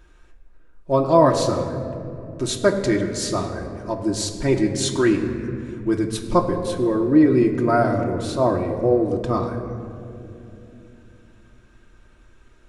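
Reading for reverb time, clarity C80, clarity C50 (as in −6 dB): 2.9 s, 8.5 dB, 7.5 dB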